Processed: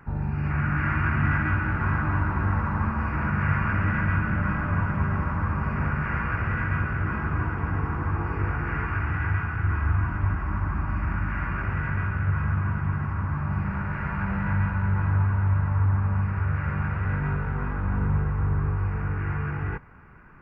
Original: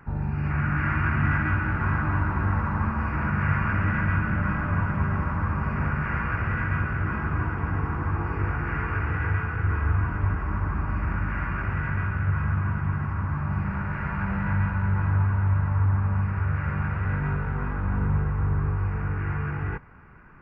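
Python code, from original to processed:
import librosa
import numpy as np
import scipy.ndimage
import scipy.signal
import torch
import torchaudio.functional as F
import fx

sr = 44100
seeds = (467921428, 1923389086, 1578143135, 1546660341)

y = fx.peak_eq(x, sr, hz=470.0, db=-11.5, octaves=0.29, at=(8.85, 11.43))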